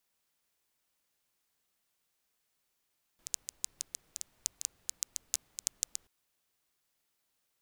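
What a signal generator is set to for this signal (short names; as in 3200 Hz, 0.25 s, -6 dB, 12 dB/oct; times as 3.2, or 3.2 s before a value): rain from filtered ticks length 2.88 s, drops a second 6.8, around 6800 Hz, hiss -28 dB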